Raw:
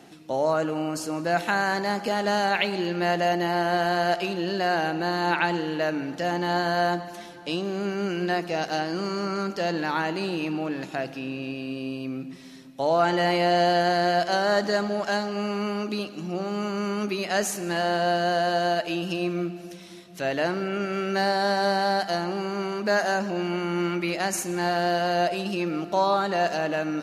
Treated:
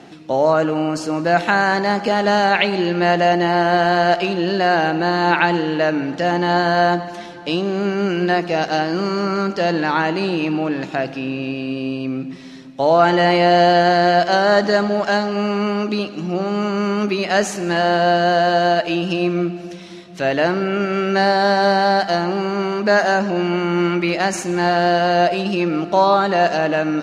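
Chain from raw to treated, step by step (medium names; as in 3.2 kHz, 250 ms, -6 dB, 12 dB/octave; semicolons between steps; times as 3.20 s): distance through air 76 m; trim +8.5 dB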